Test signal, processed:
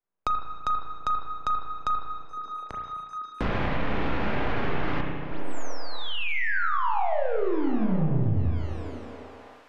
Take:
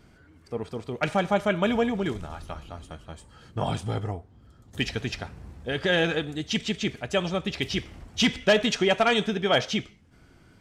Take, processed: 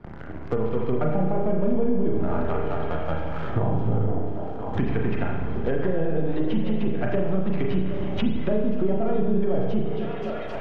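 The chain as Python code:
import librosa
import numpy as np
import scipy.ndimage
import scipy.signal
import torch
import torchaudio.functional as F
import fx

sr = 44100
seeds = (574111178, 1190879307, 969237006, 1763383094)

p1 = np.where(x < 0.0, 10.0 ** (-7.0 / 20.0) * x, x)
p2 = fx.recorder_agc(p1, sr, target_db=-21.5, rise_db_per_s=7.4, max_gain_db=30)
p3 = scipy.signal.sosfilt(scipy.signal.butter(4, 6800.0, 'lowpass', fs=sr, output='sos'), p2)
p4 = fx.env_lowpass(p3, sr, base_hz=1200.0, full_db=-22.0)
p5 = fx.leveller(p4, sr, passes=3)
p6 = fx.comb_fb(p5, sr, f0_hz=52.0, decay_s=0.65, harmonics='all', damping=0.0, mix_pct=40)
p7 = p6 + fx.echo_stepped(p6, sr, ms=253, hz=200.0, octaves=0.7, feedback_pct=70, wet_db=-9, dry=0)
p8 = fx.env_lowpass_down(p7, sr, base_hz=500.0, full_db=-19.5)
p9 = fx.rev_spring(p8, sr, rt60_s=1.0, pass_ms=(32, 37), chirp_ms=65, drr_db=0.0)
p10 = fx.band_squash(p9, sr, depth_pct=70)
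y = p10 * librosa.db_to_amplitude(-2.0)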